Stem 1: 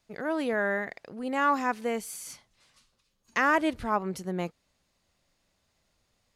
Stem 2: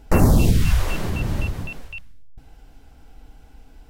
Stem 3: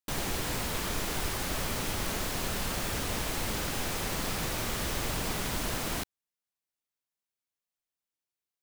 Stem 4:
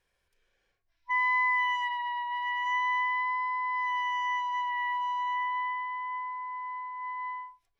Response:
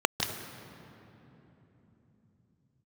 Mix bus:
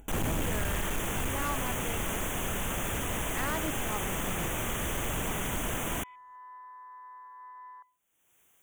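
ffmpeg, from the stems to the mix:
-filter_complex "[0:a]volume=-10dB,asplit=2[link_01][link_02];[1:a]volume=-15dB[link_03];[2:a]volume=1dB[link_04];[3:a]highpass=frequency=620:width=0.5412,highpass=frequency=620:width=1.3066,afwtdn=0.0224,adelay=400,volume=-12.5dB[link_05];[link_02]apad=whole_len=361297[link_06];[link_05][link_06]sidechaincompress=threshold=-56dB:ratio=4:attack=6:release=1500[link_07];[link_01][link_03][link_04][link_07]amix=inputs=4:normalize=0,asuperstop=centerf=4600:order=8:qfactor=1.8,acompressor=mode=upward:threshold=-44dB:ratio=2.5,volume=26dB,asoftclip=hard,volume=-26dB"

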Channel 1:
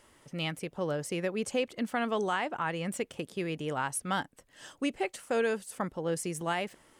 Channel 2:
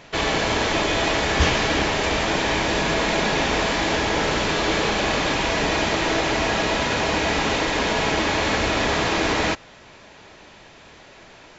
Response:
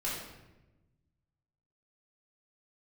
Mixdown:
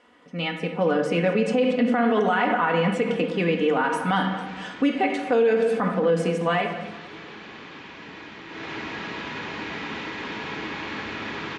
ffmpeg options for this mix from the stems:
-filter_complex "[0:a]bandreject=frequency=50:width_type=h:width=6,bandreject=frequency=100:width_type=h:width=6,bandreject=frequency=150:width_type=h:width=6,aecho=1:1:4.1:0.81,dynaudnorm=framelen=150:gausssize=9:maxgain=7dB,volume=1.5dB,asplit=4[link_01][link_02][link_03][link_04];[link_02]volume=-6.5dB[link_05];[link_03]volume=-15dB[link_06];[1:a]equalizer=frequency=630:width=1.9:gain=-12.5,adelay=2450,volume=-8dB,afade=type=in:start_time=8.48:duration=0.23:silence=0.375837,asplit=2[link_07][link_08];[link_08]volume=-9dB[link_09];[link_04]apad=whole_len=619049[link_10];[link_07][link_10]sidechaincompress=threshold=-38dB:ratio=8:attack=16:release=200[link_11];[2:a]atrim=start_sample=2205[link_12];[link_05][link_12]afir=irnorm=-1:irlink=0[link_13];[link_06][link_09]amix=inputs=2:normalize=0,aecho=0:1:232|464|696|928|1160|1392|1624:1|0.47|0.221|0.104|0.0488|0.0229|0.0108[link_14];[link_01][link_11][link_13][link_14]amix=inputs=4:normalize=0,highpass=140,lowpass=3000,alimiter=limit=-12.5dB:level=0:latency=1:release=61"

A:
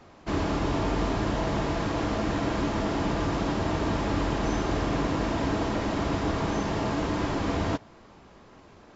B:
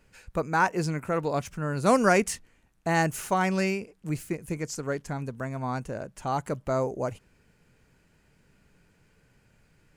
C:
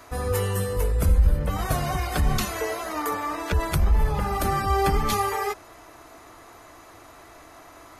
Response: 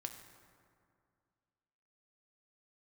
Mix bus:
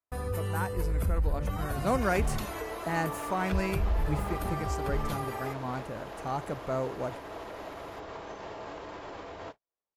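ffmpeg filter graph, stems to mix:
-filter_complex "[0:a]acompressor=threshold=-32dB:ratio=5,alimiter=level_in=5dB:limit=-24dB:level=0:latency=1:release=94,volume=-5dB,lowshelf=frequency=340:width_type=q:width=1.5:gain=-9.5,adelay=1750,volume=-1.5dB[link_01];[1:a]dynaudnorm=framelen=210:gausssize=13:maxgain=8dB,volume=-12.5dB[link_02];[2:a]alimiter=limit=-15dB:level=0:latency=1:release=98,acrossover=split=260[link_03][link_04];[link_04]acompressor=threshold=-31dB:ratio=3[link_05];[link_03][link_05]amix=inputs=2:normalize=0,volume=-5.5dB[link_06];[link_01][link_02][link_06]amix=inputs=3:normalize=0,agate=range=-44dB:threshold=-45dB:ratio=16:detection=peak,equalizer=frequency=6200:width_type=o:width=1.1:gain=-5"

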